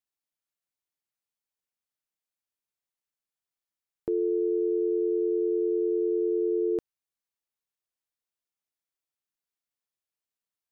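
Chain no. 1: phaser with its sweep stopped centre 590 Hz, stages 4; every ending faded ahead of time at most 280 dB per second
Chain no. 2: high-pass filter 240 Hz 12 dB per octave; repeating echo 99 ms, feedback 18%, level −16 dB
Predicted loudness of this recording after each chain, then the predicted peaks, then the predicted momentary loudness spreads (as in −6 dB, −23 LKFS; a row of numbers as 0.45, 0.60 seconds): −30.5, −29.0 LKFS; −23.0, −20.5 dBFS; 5, 3 LU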